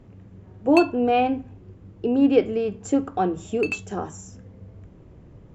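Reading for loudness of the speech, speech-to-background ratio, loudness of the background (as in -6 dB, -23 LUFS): -23.0 LUFS, 8.5 dB, -31.5 LUFS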